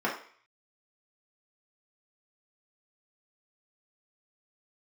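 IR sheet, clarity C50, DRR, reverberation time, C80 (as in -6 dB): 6.5 dB, -5.5 dB, 0.50 s, 11.0 dB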